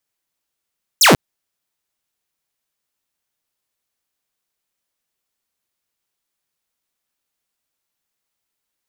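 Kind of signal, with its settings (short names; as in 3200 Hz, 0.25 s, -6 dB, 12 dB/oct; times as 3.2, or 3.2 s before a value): laser zap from 8100 Hz, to 110 Hz, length 0.14 s saw, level -4.5 dB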